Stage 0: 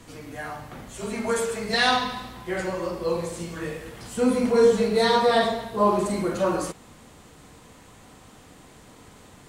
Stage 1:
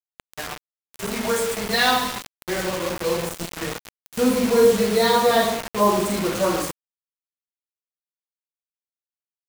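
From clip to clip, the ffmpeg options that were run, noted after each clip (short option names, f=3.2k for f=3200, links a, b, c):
-af "bandreject=f=50:t=h:w=6,bandreject=f=100:t=h:w=6,bandreject=f=150:t=h:w=6,acrusher=bits=4:mix=0:aa=0.000001,volume=2dB"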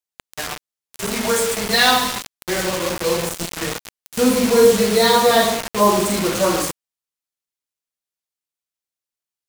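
-af "equalizer=f=7.6k:w=0.4:g=4,volume=3dB"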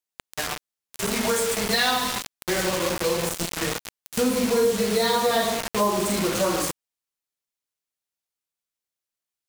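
-af "acompressor=threshold=-22dB:ratio=2.5"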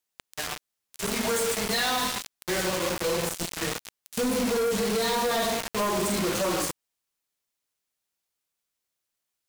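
-filter_complex "[0:a]asplit=2[a][b];[b]alimiter=limit=-20dB:level=0:latency=1:release=198,volume=-1.5dB[c];[a][c]amix=inputs=2:normalize=0,asoftclip=type=tanh:threshold=-23dB"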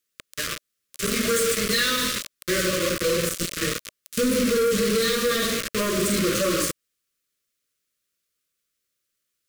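-af "asuperstop=centerf=820:order=8:qfactor=1.6,volume=4.5dB"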